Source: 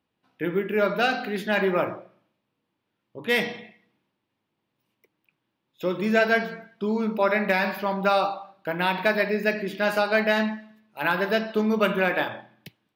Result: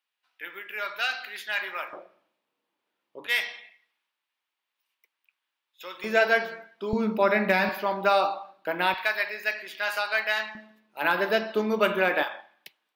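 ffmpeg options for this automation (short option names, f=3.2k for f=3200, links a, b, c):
-af "asetnsamples=n=441:p=0,asendcmd='1.93 highpass f 420;3.27 highpass f 1300;6.04 highpass f 410;6.93 highpass f 110;7.69 highpass f 310;8.94 highpass f 1100;10.55 highpass f 280;12.23 highpass f 720',highpass=1.5k"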